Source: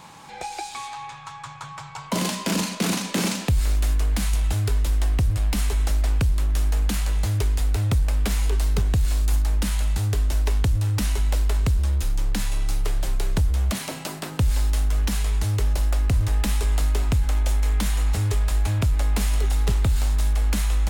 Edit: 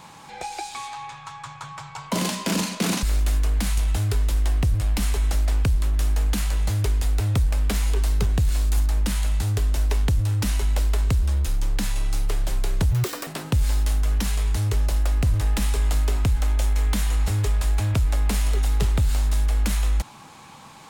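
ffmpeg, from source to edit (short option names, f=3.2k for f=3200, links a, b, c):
-filter_complex "[0:a]asplit=4[a][b][c][d];[a]atrim=end=3.032[e];[b]atrim=start=3.588:end=13.474[f];[c]atrim=start=13.47:end=14.14,asetpts=PTS-STARTPTS,asetrate=82026,aresample=44100,atrim=end_sample=15885,asetpts=PTS-STARTPTS[g];[d]atrim=start=14.136[h];[e][f]acrossfade=d=0.004:c1=hsin:c2=hsin[i];[i][g]acrossfade=d=0.004:c1=hsin:c2=hsin[j];[j][h]acrossfade=d=0.004:c1=hsin:c2=hsin"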